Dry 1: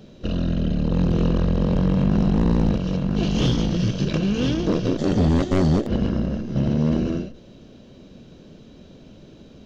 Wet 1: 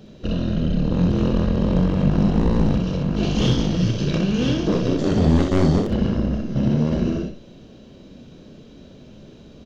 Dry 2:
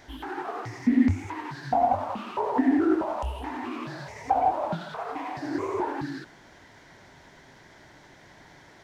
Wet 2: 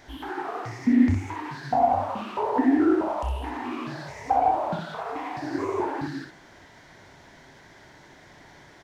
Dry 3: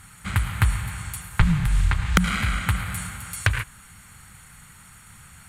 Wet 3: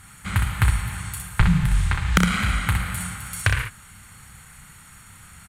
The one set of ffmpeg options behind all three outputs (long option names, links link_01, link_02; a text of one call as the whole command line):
ffmpeg -i in.wav -af "aecho=1:1:33|62:0.316|0.562" out.wav